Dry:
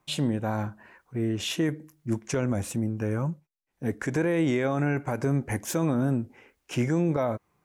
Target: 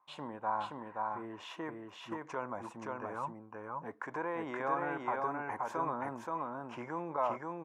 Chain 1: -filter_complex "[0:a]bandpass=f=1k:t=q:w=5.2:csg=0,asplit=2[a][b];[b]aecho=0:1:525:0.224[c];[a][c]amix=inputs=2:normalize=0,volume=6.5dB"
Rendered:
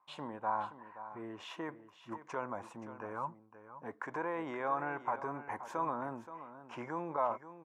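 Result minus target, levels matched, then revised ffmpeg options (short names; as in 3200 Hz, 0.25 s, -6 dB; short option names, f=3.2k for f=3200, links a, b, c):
echo-to-direct -10.5 dB
-filter_complex "[0:a]bandpass=f=1k:t=q:w=5.2:csg=0,asplit=2[a][b];[b]aecho=0:1:525:0.75[c];[a][c]amix=inputs=2:normalize=0,volume=6.5dB"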